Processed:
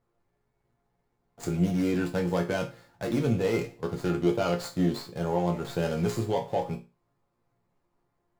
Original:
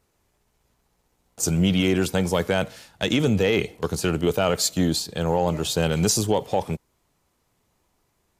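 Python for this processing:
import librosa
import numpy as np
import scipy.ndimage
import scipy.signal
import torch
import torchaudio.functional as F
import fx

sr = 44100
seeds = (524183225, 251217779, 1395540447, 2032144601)

y = scipy.ndimage.median_filter(x, 15, mode='constant')
y = fx.resonator_bank(y, sr, root=46, chord='minor', decay_s=0.28)
y = y * librosa.db_to_amplitude(9.0)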